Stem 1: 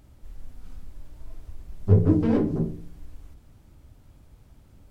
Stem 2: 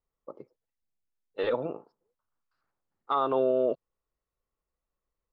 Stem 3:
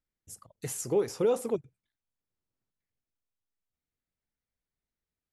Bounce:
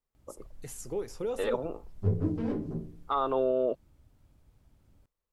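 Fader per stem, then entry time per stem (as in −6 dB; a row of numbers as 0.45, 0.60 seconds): −10.0, −2.0, −7.5 decibels; 0.15, 0.00, 0.00 seconds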